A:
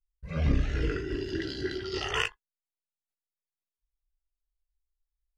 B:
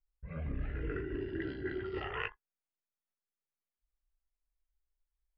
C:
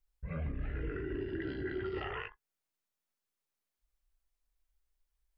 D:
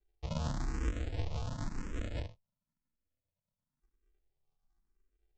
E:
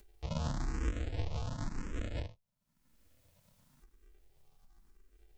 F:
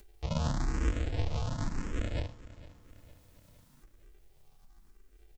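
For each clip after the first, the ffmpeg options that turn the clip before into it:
-af "lowpass=f=2.3k:w=0.5412,lowpass=f=2.3k:w=1.3066,areverse,acompressor=threshold=-33dB:ratio=6,areverse,volume=-1dB"
-af "alimiter=level_in=9.5dB:limit=-24dB:level=0:latency=1:release=183,volume=-9.5dB,volume=4.5dB"
-filter_complex "[0:a]aresample=16000,acrusher=samples=41:mix=1:aa=0.000001,aresample=44100,asplit=2[a][b];[b]afreqshift=0.96[c];[a][c]amix=inputs=2:normalize=1,volume=5.5dB"
-af "acompressor=mode=upward:threshold=-47dB:ratio=2.5"
-af "aecho=1:1:458|916|1374|1832:0.126|0.0642|0.0327|0.0167,volume=4.5dB"

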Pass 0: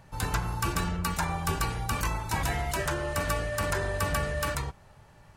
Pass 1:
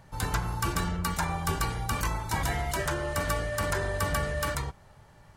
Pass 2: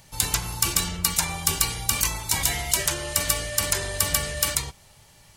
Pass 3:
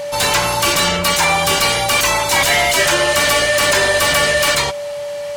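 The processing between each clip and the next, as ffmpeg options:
-af "bandreject=f=2.6k:w=17"
-af "aexciter=amount=5:drive=3.9:freq=2.2k,volume=-1.5dB"
-filter_complex "[0:a]asplit=2[a][b];[b]highpass=f=720:p=1,volume=30dB,asoftclip=type=tanh:threshold=-1dB[c];[a][c]amix=inputs=2:normalize=0,lowpass=f=2.5k:p=1,volume=-6dB,aeval=exprs='val(0)+0.0794*sin(2*PI*580*n/s)':c=same"

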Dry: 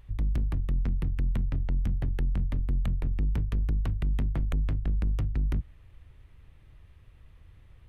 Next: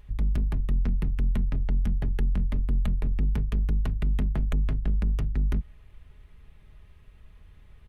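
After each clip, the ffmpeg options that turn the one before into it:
-af "aecho=1:1:4.8:0.44,volume=1.5dB"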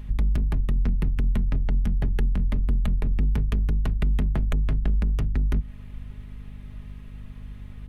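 -af "acompressor=threshold=-29dB:ratio=3,aeval=exprs='val(0)+0.00447*(sin(2*PI*50*n/s)+sin(2*PI*2*50*n/s)/2+sin(2*PI*3*50*n/s)/3+sin(2*PI*4*50*n/s)/4+sin(2*PI*5*50*n/s)/5)':c=same,volume=8dB"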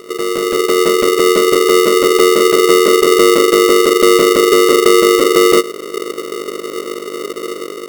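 -af "asubboost=boost=2.5:cutoff=240,dynaudnorm=f=170:g=5:m=5dB,aeval=exprs='val(0)*sgn(sin(2*PI*410*n/s))':c=same"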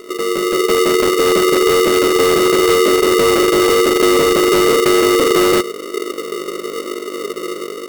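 -filter_complex "[0:a]flanger=delay=2.9:depth=2.8:regen=-42:speed=1:shape=sinusoidal,asplit=2[a][b];[b]aeval=exprs='(mod(3.35*val(0)+1,2)-1)/3.35':c=same,volume=-7dB[c];[a][c]amix=inputs=2:normalize=0"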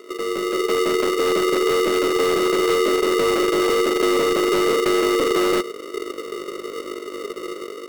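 -filter_complex "[0:a]highshelf=f=6.3k:g=-6,acrossover=split=200[a][b];[a]acrusher=bits=4:dc=4:mix=0:aa=0.000001[c];[c][b]amix=inputs=2:normalize=0,volume=-6dB"

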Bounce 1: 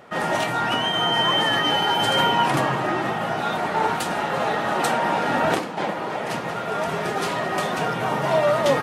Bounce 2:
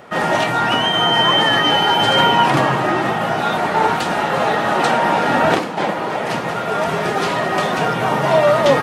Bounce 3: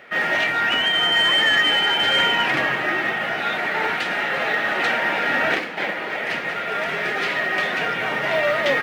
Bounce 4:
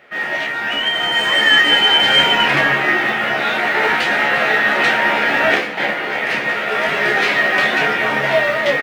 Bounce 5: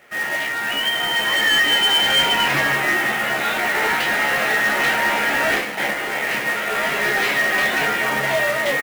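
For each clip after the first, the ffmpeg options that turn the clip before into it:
-filter_complex "[0:a]acrossover=split=6200[a][b];[b]acompressor=threshold=-46dB:ratio=4:attack=1:release=60[c];[a][c]amix=inputs=2:normalize=0,volume=6dB"
-filter_complex "[0:a]equalizer=f=125:t=o:w=1:g=-4,equalizer=f=1k:t=o:w=1:g=-10,equalizer=f=2k:t=o:w=1:g=10,equalizer=f=8k:t=o:w=1:g=-6,asplit=2[a][b];[b]highpass=f=720:p=1,volume=9dB,asoftclip=type=tanh:threshold=-1dB[c];[a][c]amix=inputs=2:normalize=0,lowpass=f=4.6k:p=1,volume=-6dB,acrusher=bits=9:mode=log:mix=0:aa=0.000001,volume=-7dB"
-filter_complex "[0:a]dynaudnorm=f=440:g=5:m=11.5dB,asplit=2[a][b];[b]aecho=0:1:14|28:0.501|0.562[c];[a][c]amix=inputs=2:normalize=0,volume=-3.5dB"
-filter_complex "[0:a]acrusher=bits=2:mode=log:mix=0:aa=0.000001,asoftclip=type=tanh:threshold=-8.5dB,asplit=2[a][b];[b]adelay=15,volume=-13dB[c];[a][c]amix=inputs=2:normalize=0,volume=-3dB"

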